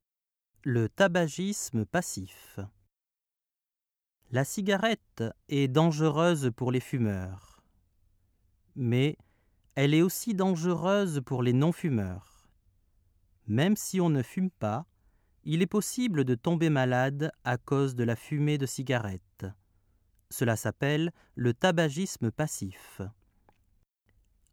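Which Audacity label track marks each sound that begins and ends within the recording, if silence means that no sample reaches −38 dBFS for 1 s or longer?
4.330000	7.350000	sound
8.770000	12.190000	sound
13.480000	23.090000	sound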